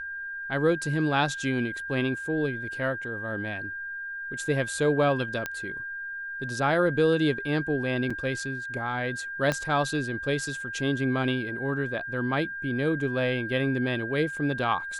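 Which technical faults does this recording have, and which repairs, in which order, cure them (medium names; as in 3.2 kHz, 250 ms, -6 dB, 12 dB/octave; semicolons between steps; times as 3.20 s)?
whine 1.6 kHz -33 dBFS
5.46 s: pop -15 dBFS
8.10 s: dropout 4.9 ms
9.52 s: pop -13 dBFS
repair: de-click; band-stop 1.6 kHz, Q 30; interpolate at 8.10 s, 4.9 ms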